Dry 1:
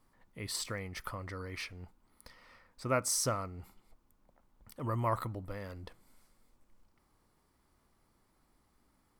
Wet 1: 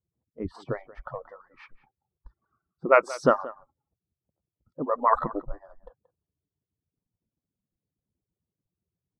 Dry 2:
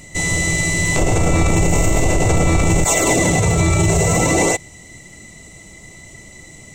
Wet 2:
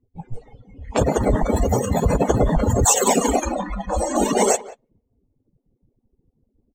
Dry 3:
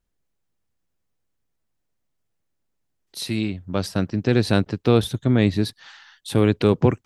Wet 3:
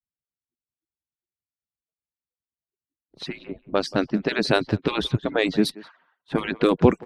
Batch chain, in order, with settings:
median-filter separation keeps percussive; in parallel at -3 dB: compressor 6:1, threshold -28 dBFS; on the sum: spectral noise reduction 22 dB; low-pass opened by the level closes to 330 Hz, open at -18 dBFS; speakerphone echo 0.18 s, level -18 dB; normalise peaks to -3 dBFS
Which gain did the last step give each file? +11.0, +2.0, +1.5 dB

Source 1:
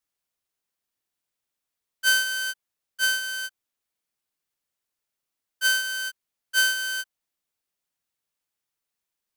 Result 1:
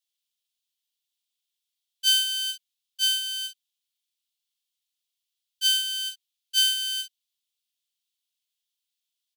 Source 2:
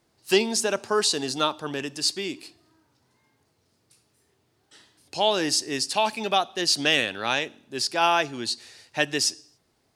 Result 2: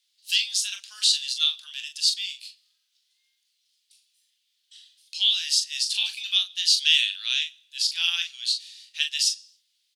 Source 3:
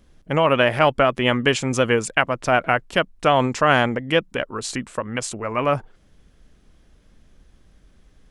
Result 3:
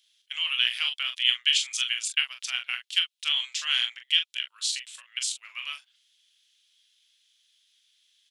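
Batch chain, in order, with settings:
ladder high-pass 2900 Hz, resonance 55%; early reflections 24 ms -11 dB, 41 ms -7.5 dB; gain +8 dB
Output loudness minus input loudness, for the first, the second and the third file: +0.5, +1.5, -5.5 LU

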